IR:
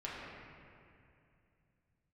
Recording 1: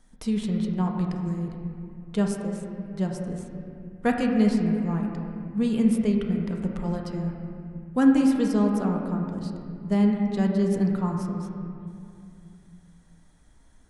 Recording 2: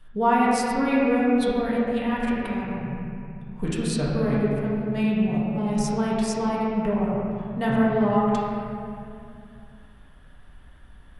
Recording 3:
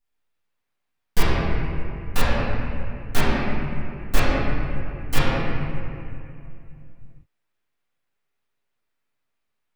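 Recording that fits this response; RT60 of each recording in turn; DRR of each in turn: 2; 2.6, 2.5, 2.5 seconds; 0.5, −7.0, −12.5 decibels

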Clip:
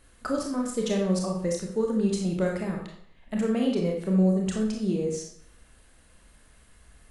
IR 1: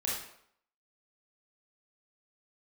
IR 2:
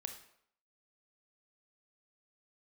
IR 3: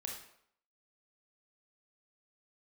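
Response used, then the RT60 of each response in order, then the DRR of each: 3; 0.70, 0.70, 0.70 seconds; −5.5, 5.5, 0.0 decibels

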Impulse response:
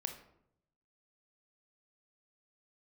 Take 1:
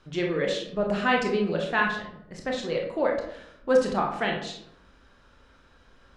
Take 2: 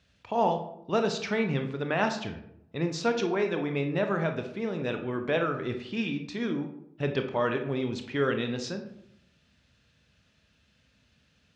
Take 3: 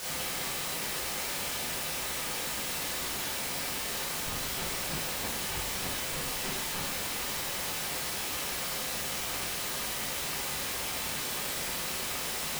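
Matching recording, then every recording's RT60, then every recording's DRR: 2; 0.75, 0.75, 0.75 seconds; 0.0, 5.0, −8.0 decibels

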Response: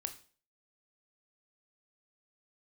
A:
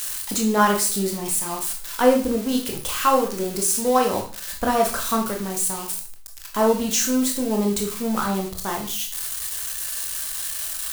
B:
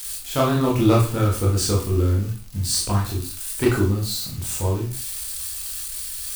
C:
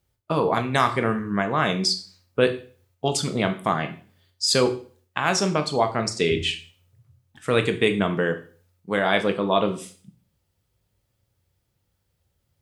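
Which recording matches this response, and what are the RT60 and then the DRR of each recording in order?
C; 0.45, 0.45, 0.45 seconds; 1.0, −4.0, 7.0 decibels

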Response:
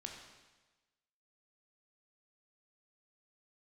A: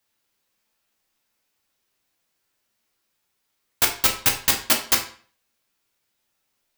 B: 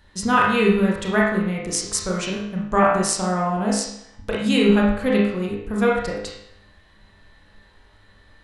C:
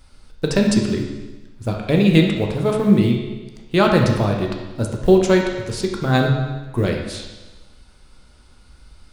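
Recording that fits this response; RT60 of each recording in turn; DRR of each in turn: C; 0.45, 0.75, 1.2 seconds; 1.0, −4.0, 1.0 decibels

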